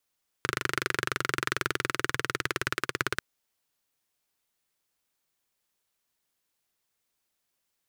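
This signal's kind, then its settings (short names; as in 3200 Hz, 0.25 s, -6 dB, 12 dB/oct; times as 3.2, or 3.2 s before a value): single-cylinder engine model, changing speed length 2.74 s, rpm 3000, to 2000, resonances 130/370/1400 Hz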